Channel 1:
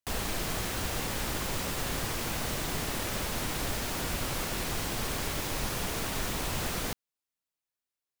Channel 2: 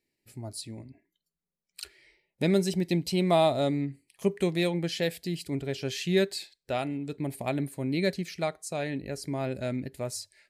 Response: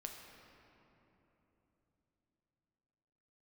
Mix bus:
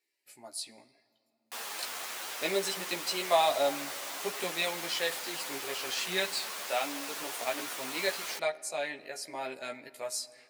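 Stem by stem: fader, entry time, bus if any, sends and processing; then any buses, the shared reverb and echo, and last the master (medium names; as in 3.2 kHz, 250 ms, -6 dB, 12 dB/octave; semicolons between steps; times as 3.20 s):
-0.5 dB, 1.45 s, no send, three-phase chorus
+3.0 dB, 0.00 s, send -9 dB, chorus voices 4, 0.2 Hz, delay 15 ms, depth 2.6 ms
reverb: on, RT60 3.6 s, pre-delay 7 ms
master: high-pass 700 Hz 12 dB/octave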